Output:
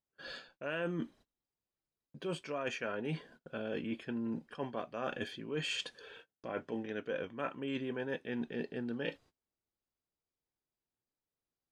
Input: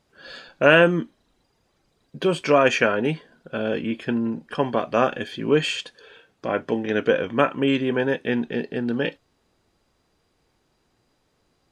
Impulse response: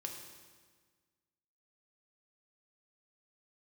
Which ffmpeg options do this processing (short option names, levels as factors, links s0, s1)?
-af "agate=range=0.0562:threshold=0.00316:ratio=16:detection=peak,areverse,acompressor=threshold=0.0316:ratio=10,areverse,volume=0.596"